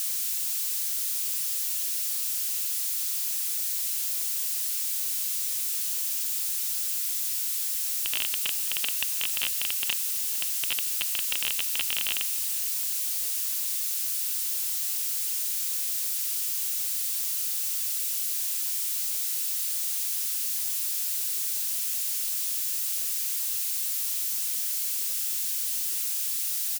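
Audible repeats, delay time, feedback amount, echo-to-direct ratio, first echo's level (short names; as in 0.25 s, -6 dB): 2, 0.455 s, 42%, -20.0 dB, -21.0 dB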